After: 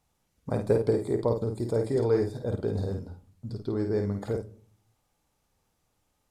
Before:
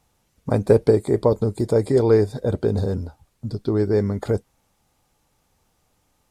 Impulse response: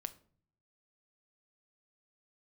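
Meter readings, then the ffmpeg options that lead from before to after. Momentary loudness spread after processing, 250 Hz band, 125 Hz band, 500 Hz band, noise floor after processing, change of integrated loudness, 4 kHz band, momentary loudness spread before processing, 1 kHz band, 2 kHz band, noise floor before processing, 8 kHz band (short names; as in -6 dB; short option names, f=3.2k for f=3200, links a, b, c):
14 LU, -8.0 dB, -8.0 dB, -8.0 dB, -75 dBFS, -8.0 dB, -8.0 dB, 13 LU, -8.0 dB, -8.0 dB, -68 dBFS, n/a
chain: -filter_complex "[0:a]asplit=2[a][b];[1:a]atrim=start_sample=2205,adelay=51[c];[b][c]afir=irnorm=-1:irlink=0,volume=-2.5dB[d];[a][d]amix=inputs=2:normalize=0,volume=-9dB"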